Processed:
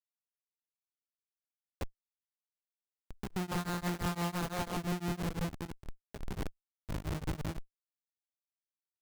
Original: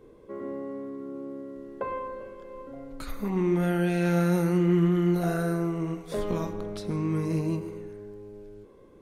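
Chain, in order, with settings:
0:03.51–0:04.77: wrap-around overflow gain 19.5 dB
Chebyshev band-stop filter 1,100–9,200 Hz, order 2
comparator with hysteresis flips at −26 dBFS
brickwall limiter −34 dBFS, peak gain reduction 9.5 dB
buffer that repeats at 0:03.31, samples 256, times 8
tremolo along a rectified sine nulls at 5.9 Hz
level +4.5 dB

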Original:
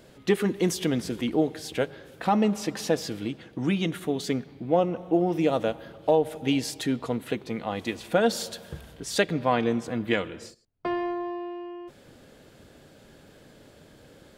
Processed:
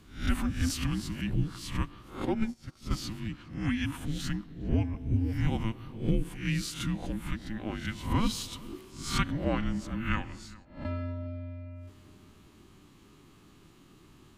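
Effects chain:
peak hold with a rise ahead of every peak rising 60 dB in 0.42 s
frequency shifter −440 Hz
on a send: feedback echo with a low-pass in the loop 408 ms, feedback 39%, low-pass 1,900 Hz, level −20.5 dB
0:02.25–0:02.91: on the sum: expander for the loud parts 2.5 to 1, over −34 dBFS
level −5.5 dB

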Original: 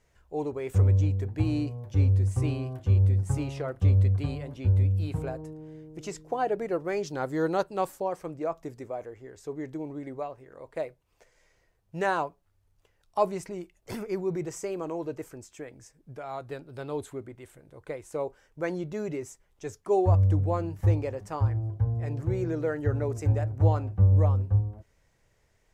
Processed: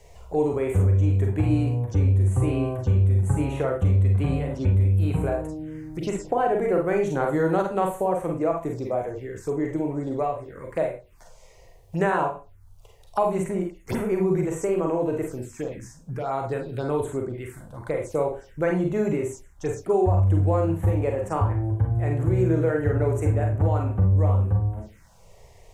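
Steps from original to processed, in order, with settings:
downward compressor, threshold −24 dBFS, peak gain reduction 8.5 dB
four-comb reverb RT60 0.3 s, combs from 33 ms, DRR 1.5 dB
phaser swept by the level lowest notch 230 Hz, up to 5,000 Hz, full sweep at −31 dBFS
multiband upward and downward compressor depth 40%
level +6.5 dB

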